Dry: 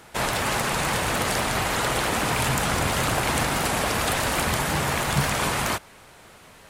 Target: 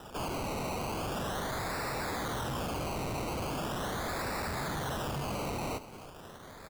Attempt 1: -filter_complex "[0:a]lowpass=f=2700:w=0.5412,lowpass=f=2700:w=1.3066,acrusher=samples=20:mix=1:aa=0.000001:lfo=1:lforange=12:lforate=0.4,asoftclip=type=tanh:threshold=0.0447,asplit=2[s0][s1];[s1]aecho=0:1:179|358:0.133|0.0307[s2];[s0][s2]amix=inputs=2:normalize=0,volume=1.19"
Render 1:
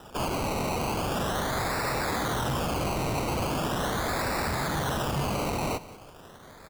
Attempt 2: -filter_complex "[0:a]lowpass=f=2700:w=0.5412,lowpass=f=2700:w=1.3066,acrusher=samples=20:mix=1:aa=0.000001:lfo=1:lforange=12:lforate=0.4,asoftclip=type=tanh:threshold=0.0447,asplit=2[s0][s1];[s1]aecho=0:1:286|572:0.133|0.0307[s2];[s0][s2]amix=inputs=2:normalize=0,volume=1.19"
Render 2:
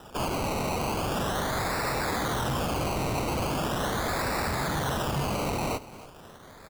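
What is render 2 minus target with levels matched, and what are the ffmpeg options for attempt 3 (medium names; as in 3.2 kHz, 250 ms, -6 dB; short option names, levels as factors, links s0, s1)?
saturation: distortion -4 dB
-filter_complex "[0:a]lowpass=f=2700:w=0.5412,lowpass=f=2700:w=1.3066,acrusher=samples=20:mix=1:aa=0.000001:lfo=1:lforange=12:lforate=0.4,asoftclip=type=tanh:threshold=0.0168,asplit=2[s0][s1];[s1]aecho=0:1:286|572:0.133|0.0307[s2];[s0][s2]amix=inputs=2:normalize=0,volume=1.19"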